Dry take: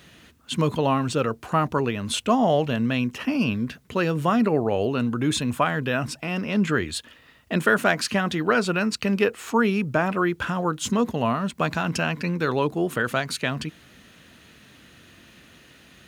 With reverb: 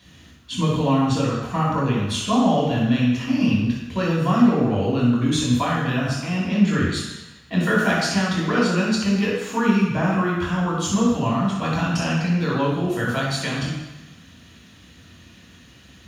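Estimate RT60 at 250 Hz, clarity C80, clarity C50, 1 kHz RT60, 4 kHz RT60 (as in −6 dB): 0.95 s, 3.0 dB, 0.0 dB, 1.1 s, 1.1 s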